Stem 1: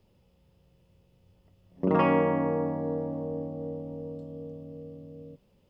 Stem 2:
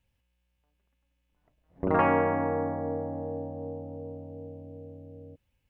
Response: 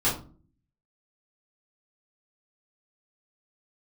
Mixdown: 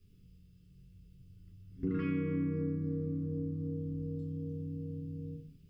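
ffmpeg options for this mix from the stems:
-filter_complex "[0:a]alimiter=limit=-17dB:level=0:latency=1:release=235,volume=-7dB,asplit=2[a][b];[b]volume=-3dB[c];[1:a]volume=-1,volume=-1.5dB[d];[2:a]atrim=start_sample=2205[e];[c][e]afir=irnorm=-1:irlink=0[f];[a][d][f]amix=inputs=3:normalize=0,asuperstop=centerf=740:order=8:qfactor=1,equalizer=f=900:w=0.37:g=-12.5,acompressor=threshold=-36dB:ratio=2"

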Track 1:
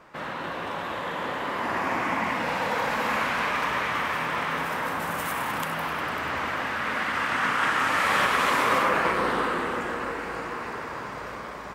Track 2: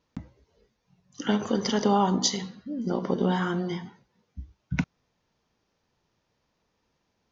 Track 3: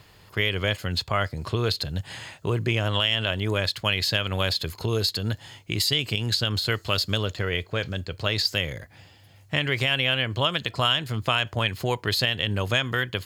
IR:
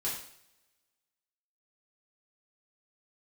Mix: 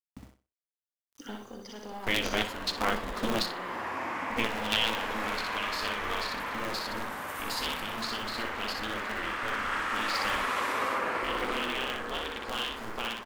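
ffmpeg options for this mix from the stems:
-filter_complex "[0:a]adelay=2100,volume=-9dB,asplit=2[a][b];[b]volume=-4.5dB[c];[1:a]aeval=exprs='(tanh(7.08*val(0)+0.25)-tanh(0.25))/7.08':c=same,acrusher=bits=7:mix=0:aa=0.000001,volume=-7.5dB,afade=t=out:st=1.01:d=0.47:silence=0.354813,asplit=3[d][e][f];[e]volume=-4dB[g];[2:a]flanger=delay=7.3:depth=7.2:regen=75:speed=0.61:shape=sinusoidal,aeval=exprs='val(0)*sgn(sin(2*PI*110*n/s))':c=same,adelay=1700,volume=0.5dB,asplit=3[h][i][j];[h]atrim=end=3.51,asetpts=PTS-STARTPTS,afade=t=out:st=3.506:d=0.004:c=hsin[k];[i]atrim=start=3.51:end=4.3,asetpts=PTS-STARTPTS,volume=0[l];[j]atrim=start=4.3,asetpts=PTS-STARTPTS,afade=t=in:d=0.004:c=hsin[m];[k][l][m]concat=n=3:v=0:a=1,asplit=2[n][o];[o]volume=-13dB[p];[f]apad=whole_len=659438[q];[n][q]sidechaingate=range=-9dB:threshold=-58dB:ratio=16:detection=peak[r];[c][g][p]amix=inputs=3:normalize=0,aecho=0:1:61|122|183|244:1|0.25|0.0625|0.0156[s];[a][d][r][s]amix=inputs=4:normalize=0,equalizer=f=160:t=o:w=0.49:g=-10"

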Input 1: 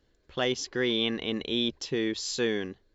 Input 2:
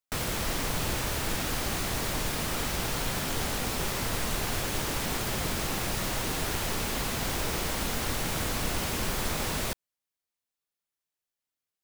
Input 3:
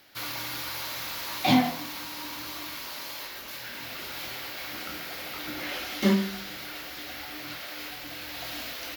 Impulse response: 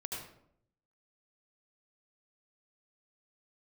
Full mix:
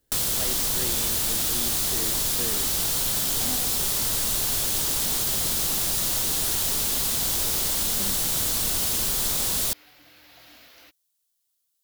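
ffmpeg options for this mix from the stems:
-filter_complex "[0:a]volume=-6.5dB[a];[1:a]aexciter=amount=3.2:drive=6.4:freq=3.2k,volume=0.5dB[b];[2:a]adelay=1950,volume=-14dB[c];[a][b][c]amix=inputs=3:normalize=0,acompressor=threshold=-27dB:ratio=1.5"

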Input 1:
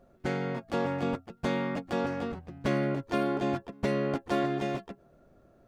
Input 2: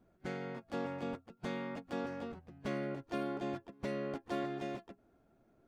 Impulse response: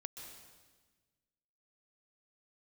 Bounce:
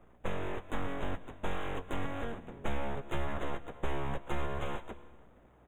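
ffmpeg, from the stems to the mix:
-filter_complex "[0:a]highshelf=f=5.8k:g=-6.5,aeval=exprs='abs(val(0))':c=same,volume=-0.5dB,asplit=2[a][b];[b]volume=-9.5dB[c];[1:a]equalizer=f=470:w=1.6:g=12.5,aeval=exprs='val(0)+0.00178*(sin(2*PI*60*n/s)+sin(2*PI*2*60*n/s)/2+sin(2*PI*3*60*n/s)/3+sin(2*PI*4*60*n/s)/4+sin(2*PI*5*60*n/s)/5)':c=same,adelay=3.3,volume=-9dB[d];[2:a]atrim=start_sample=2205[e];[c][e]afir=irnorm=-1:irlink=0[f];[a][d][f]amix=inputs=3:normalize=0,asuperstop=centerf=4900:order=20:qfactor=2,acrossover=split=120[g][h];[h]acompressor=threshold=-35dB:ratio=6[i];[g][i]amix=inputs=2:normalize=0"

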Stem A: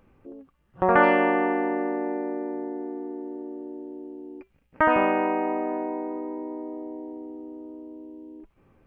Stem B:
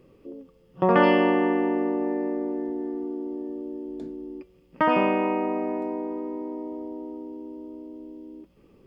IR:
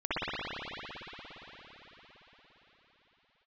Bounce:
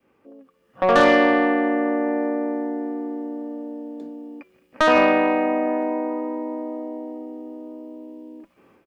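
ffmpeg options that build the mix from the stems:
-filter_complex "[0:a]highpass=f=630:p=1,adynamicequalizer=threshold=0.0141:dfrequency=1100:dqfactor=1.4:tfrequency=1100:tqfactor=1.4:attack=5:release=100:ratio=0.375:range=2.5:mode=cutabove:tftype=bell,asoftclip=type=tanh:threshold=-19dB,volume=1dB[a];[1:a]highpass=f=200:w=0.5412,highpass=f=200:w=1.3066,adynamicequalizer=threshold=0.02:dfrequency=380:dqfactor=1.3:tfrequency=380:tqfactor=1.3:attack=5:release=100:ratio=0.375:range=3:mode=boostabove:tftype=bell,adelay=1,volume=-10.5dB[b];[a][b]amix=inputs=2:normalize=0,dynaudnorm=f=380:g=3:m=8.5dB"

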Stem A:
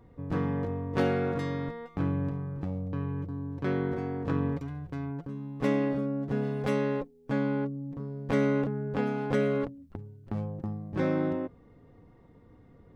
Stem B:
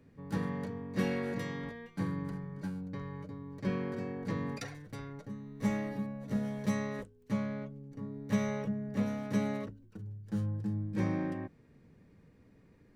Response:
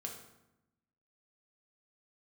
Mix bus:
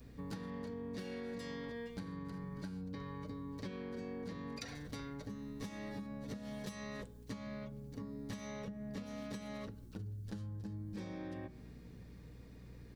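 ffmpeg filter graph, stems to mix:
-filter_complex "[0:a]lowshelf=f=200:g=9,acompressor=threshold=-31dB:ratio=6,aexciter=amount=15.6:drive=5.9:freq=3.2k,volume=-15dB[a];[1:a]equalizer=f=4.3k:w=1.2:g=8,acompressor=threshold=-38dB:ratio=6,aeval=exprs='val(0)+0.00126*(sin(2*PI*60*n/s)+sin(2*PI*2*60*n/s)/2+sin(2*PI*3*60*n/s)/3+sin(2*PI*4*60*n/s)/4+sin(2*PI*5*60*n/s)/5)':c=same,adelay=5.1,volume=1.5dB,asplit=2[b][c];[c]volume=-9.5dB[d];[2:a]atrim=start_sample=2205[e];[d][e]afir=irnorm=-1:irlink=0[f];[a][b][f]amix=inputs=3:normalize=0,acompressor=threshold=-41dB:ratio=6"

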